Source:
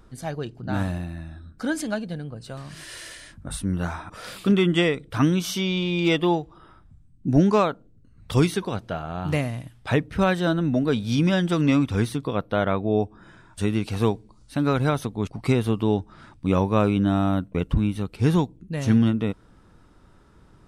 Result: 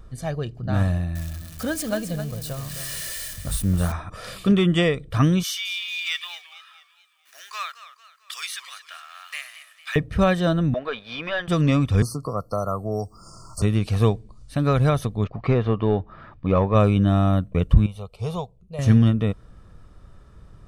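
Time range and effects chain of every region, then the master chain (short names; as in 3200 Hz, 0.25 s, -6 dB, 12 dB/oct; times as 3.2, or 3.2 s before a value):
1.15–3.92 switching spikes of -28 dBFS + echo 0.263 s -9.5 dB
5.43–9.96 G.711 law mismatch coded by mu + HPF 1500 Hz 24 dB/oct + warbling echo 0.223 s, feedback 47%, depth 170 cents, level -14 dB
10.74–11.48 HPF 920 Hz + sample leveller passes 2 + air absorption 380 m
12.02–13.62 brick-wall FIR band-stop 1400–4200 Hz + tilt shelf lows -8 dB, about 1400 Hz + three-band squash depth 70%
15.24–16.75 air absorption 190 m + overdrive pedal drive 13 dB, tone 1400 Hz, clips at -8.5 dBFS
17.86–18.79 tone controls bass -11 dB, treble -7 dB + fixed phaser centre 710 Hz, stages 4
whole clip: low shelf 160 Hz +7.5 dB; comb 1.7 ms, depth 40%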